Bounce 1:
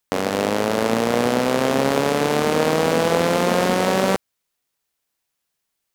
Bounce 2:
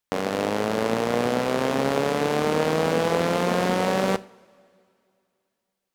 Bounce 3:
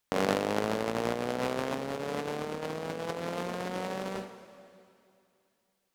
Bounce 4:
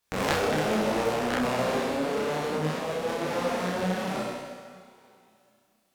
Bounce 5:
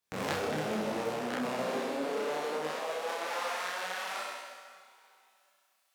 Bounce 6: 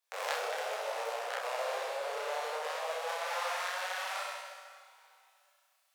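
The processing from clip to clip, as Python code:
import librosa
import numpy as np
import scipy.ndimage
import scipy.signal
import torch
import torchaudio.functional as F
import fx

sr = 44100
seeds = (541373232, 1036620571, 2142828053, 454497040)

y1 = fx.high_shelf(x, sr, hz=5800.0, db=-5.0)
y1 = fx.rev_double_slope(y1, sr, seeds[0], early_s=0.39, late_s=2.6, knee_db=-19, drr_db=15.0)
y1 = y1 * 10.0 ** (-4.0 / 20.0)
y2 = fx.over_compress(y1, sr, threshold_db=-28.0, ratio=-0.5)
y2 = y2 * 10.0 ** (-3.0 / 20.0)
y3 = fx.room_flutter(y2, sr, wall_m=5.6, rt60_s=1.2)
y3 = fx.cheby_harmonics(y3, sr, harmonics=(3, 7), levels_db=(-6, -26), full_scale_db=-8.5)
y3 = fx.detune_double(y3, sr, cents=39)
y3 = y3 * 10.0 ** (7.5 / 20.0)
y4 = fx.filter_sweep_highpass(y3, sr, from_hz=100.0, to_hz=1100.0, start_s=0.82, end_s=3.65, q=0.9)
y4 = fx.rider(y4, sr, range_db=5, speed_s=2.0)
y4 = y4 * 10.0 ** (-5.5 / 20.0)
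y5 = scipy.signal.sosfilt(scipy.signal.butter(8, 500.0, 'highpass', fs=sr, output='sos'), y4)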